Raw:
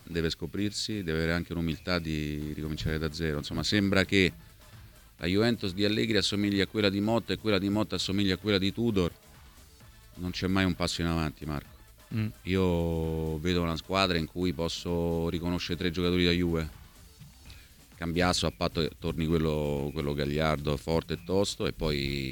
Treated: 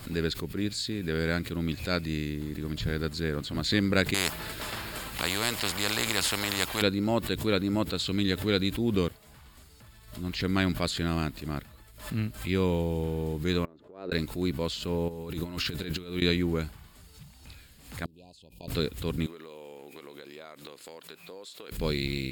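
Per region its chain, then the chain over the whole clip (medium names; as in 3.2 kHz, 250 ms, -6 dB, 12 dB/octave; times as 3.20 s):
4.14–6.82 s: treble shelf 4.6 kHz -6 dB + spectrum-flattening compressor 4:1
13.65–14.12 s: band-pass filter 410 Hz, Q 2.1 + compression 12:1, threshold -47 dBFS
15.08–16.22 s: treble shelf 6.3 kHz +5 dB + compressor with a negative ratio -34 dBFS, ratio -0.5
18.05–18.68 s: inverted gate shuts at -24 dBFS, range -27 dB + brick-wall FIR band-stop 1–2.4 kHz
19.26–21.72 s: high-pass 420 Hz + compression 10:1, threshold -41 dBFS
whole clip: band-stop 5.9 kHz, Q 6.5; swell ahead of each attack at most 110 dB/s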